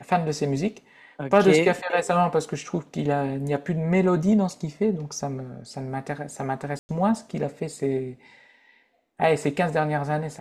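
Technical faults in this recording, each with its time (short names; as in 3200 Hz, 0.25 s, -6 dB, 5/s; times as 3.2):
6.79–6.89 gap 0.1 s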